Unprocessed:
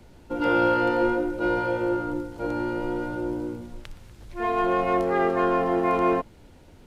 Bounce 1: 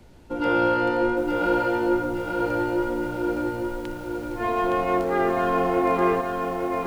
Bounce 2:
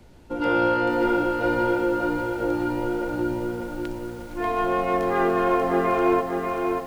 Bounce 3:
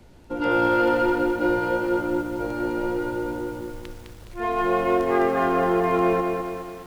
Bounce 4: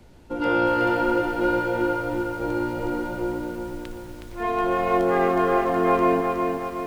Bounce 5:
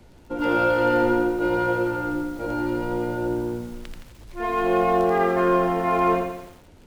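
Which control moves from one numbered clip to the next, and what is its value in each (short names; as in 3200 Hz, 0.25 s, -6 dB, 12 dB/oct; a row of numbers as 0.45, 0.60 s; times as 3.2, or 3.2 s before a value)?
lo-fi delay, time: 865, 589, 208, 367, 84 ms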